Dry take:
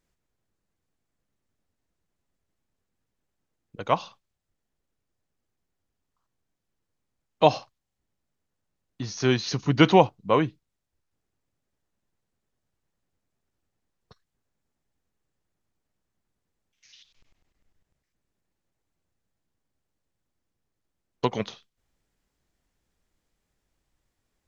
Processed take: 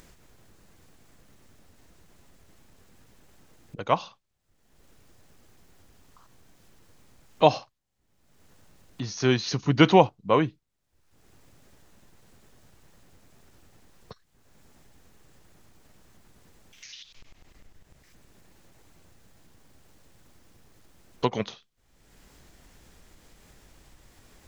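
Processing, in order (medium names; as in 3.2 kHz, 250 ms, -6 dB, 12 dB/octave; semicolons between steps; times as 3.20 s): upward compressor, threshold -35 dBFS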